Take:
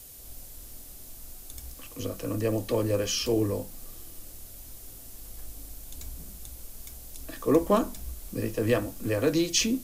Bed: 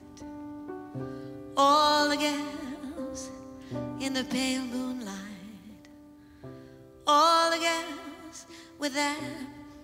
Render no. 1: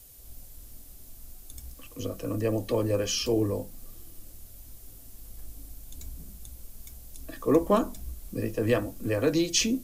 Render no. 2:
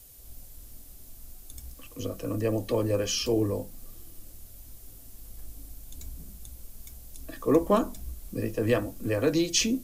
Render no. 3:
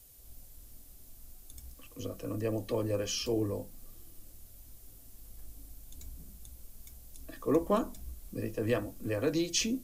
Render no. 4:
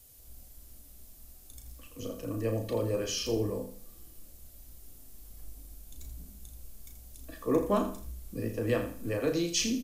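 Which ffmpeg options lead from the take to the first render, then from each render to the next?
ffmpeg -i in.wav -af "afftdn=noise_reduction=6:noise_floor=-46" out.wav
ffmpeg -i in.wav -af anull out.wav
ffmpeg -i in.wav -af "volume=-5.5dB" out.wav
ffmpeg -i in.wav -filter_complex "[0:a]asplit=2[link_01][link_02];[link_02]adelay=35,volume=-7dB[link_03];[link_01][link_03]amix=inputs=2:normalize=0,asplit=2[link_04][link_05];[link_05]aecho=0:1:82|164|246:0.299|0.0896|0.0269[link_06];[link_04][link_06]amix=inputs=2:normalize=0" out.wav

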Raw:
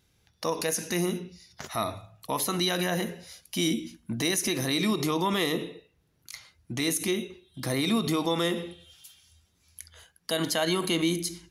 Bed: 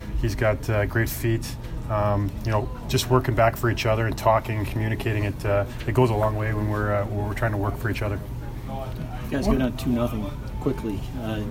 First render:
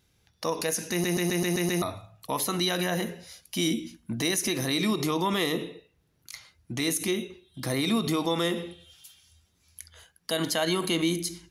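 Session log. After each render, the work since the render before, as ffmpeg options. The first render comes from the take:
ffmpeg -i in.wav -filter_complex "[0:a]asplit=8[link_01][link_02][link_03][link_04][link_05][link_06][link_07][link_08];[link_01]atrim=end=1.042[link_09];[link_02]atrim=start=0.908:end=1.042[link_10];[link_03]atrim=start=0.908:end=1.042[link_11];[link_04]atrim=start=0.908:end=1.042[link_12];[link_05]atrim=start=0.908:end=1.042[link_13];[link_06]atrim=start=0.908:end=1.042[link_14];[link_07]atrim=start=0.908:end=1.042[link_15];[link_08]atrim=start=1.818[link_16];[link_09][link_10]acrossfade=duration=0.004:curve1=hsin:curve2=hsin[link_17];[link_17][link_11]acrossfade=duration=0.004:curve1=hsin:curve2=hsin[link_18];[link_18][link_12]acrossfade=duration=0.004:curve1=hsin:curve2=hsin[link_19];[link_19][link_13]acrossfade=duration=0.004:curve1=hsin:curve2=hsin[link_20];[link_20][link_14]acrossfade=duration=0.004:curve1=hsin:curve2=hsin[link_21];[link_21][link_15]acrossfade=duration=0.004:curve1=hsin:curve2=hsin[link_22];[link_22][link_16]acrossfade=duration=0.004:curve1=hsin:curve2=hsin" out.wav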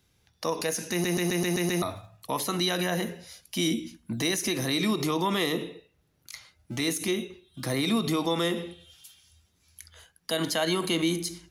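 ffmpeg -i in.wav -filter_complex "[0:a]acrossover=split=110|880|7200[link_01][link_02][link_03][link_04];[link_01]acrusher=samples=37:mix=1:aa=0.000001:lfo=1:lforange=59.2:lforate=0.2[link_05];[link_04]asoftclip=type=tanh:threshold=-31.5dB[link_06];[link_05][link_02][link_03][link_06]amix=inputs=4:normalize=0" out.wav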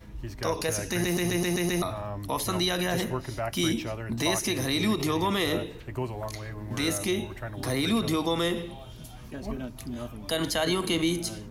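ffmpeg -i in.wav -i bed.wav -filter_complex "[1:a]volume=-13dB[link_01];[0:a][link_01]amix=inputs=2:normalize=0" out.wav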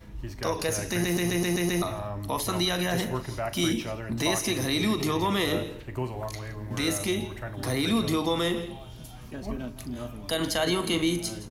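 ffmpeg -i in.wav -filter_complex "[0:a]asplit=2[link_01][link_02];[link_02]adelay=40,volume=-13dB[link_03];[link_01][link_03]amix=inputs=2:normalize=0,aecho=1:1:168:0.15" out.wav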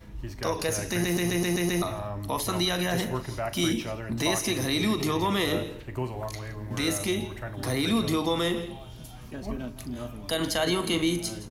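ffmpeg -i in.wav -af anull out.wav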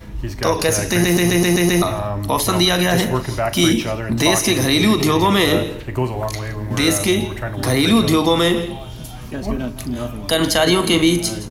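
ffmpeg -i in.wav -af "volume=11dB,alimiter=limit=-3dB:level=0:latency=1" out.wav

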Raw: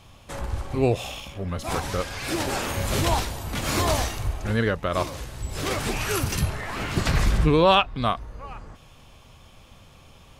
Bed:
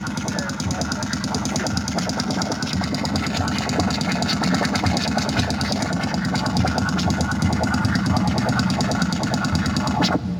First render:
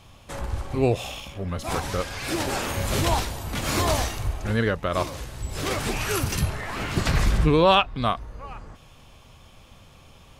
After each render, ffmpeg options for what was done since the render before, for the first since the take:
ffmpeg -i in.wav -af anull out.wav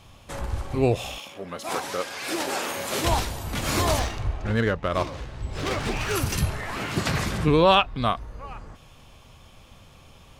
ffmpeg -i in.wav -filter_complex "[0:a]asettb=1/sr,asplit=3[link_01][link_02][link_03];[link_01]atrim=end=1.184[link_04];[link_02]atrim=start=1.18:end=3.04,asetpts=PTS-STARTPTS,afade=type=in:duration=0.004:curve=qsin,afade=type=out:start_time=1.856:duration=0.004:curve=qsin,highpass=290[link_05];[link_03]atrim=start=3.036[link_06];[link_04][link_05]acrossfade=duration=0.004:curve1=hsin:curve2=qsin[link_07];[link_07][link_06]acrossfade=duration=0.004:curve1=qsin:curve2=hsin,asettb=1/sr,asplit=3[link_08][link_09][link_10];[link_08]atrim=end=3.994[link_11];[link_09]atrim=start=3.99:end=6.16,asetpts=PTS-STARTPTS,afade=type=in:duration=0.004:curve=qsin,afade=type=out:start_time=2.166:duration=0.004:curve=qsin,adynamicsmooth=sensitivity=5.5:basefreq=3700[link_12];[link_10]atrim=start=6.156[link_13];[link_11][link_12]acrossfade=duration=0.004:curve1=hsin:curve2=qsin[link_14];[link_14][link_13]acrossfade=duration=0.004:curve1=qsin:curve2=hsin,asettb=1/sr,asplit=3[link_15][link_16][link_17];[link_15]atrim=end=6.784[link_18];[link_16]atrim=start=6.78:end=7.48,asetpts=PTS-STARTPTS,afade=type=in:duration=0.004:curve=qsin,afade=type=out:start_time=0.696:duration=0.004:curve=qsin,highpass=110[link_19];[link_17]atrim=start=7.476[link_20];[link_18][link_19]acrossfade=duration=0.004:curve1=hsin:curve2=qsin[link_21];[link_21][link_20]acrossfade=duration=0.004:curve1=qsin:curve2=hsin" out.wav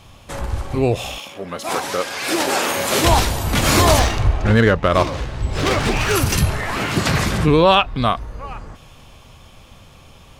ffmpeg -i in.wav -filter_complex "[0:a]asplit=2[link_01][link_02];[link_02]alimiter=limit=-17.5dB:level=0:latency=1:release=69,volume=-1dB[link_03];[link_01][link_03]amix=inputs=2:normalize=0,dynaudnorm=framelen=460:gausssize=11:maxgain=11.5dB" out.wav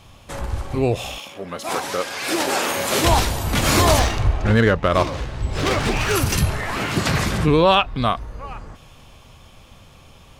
ffmpeg -i in.wav -af "volume=-2dB" out.wav

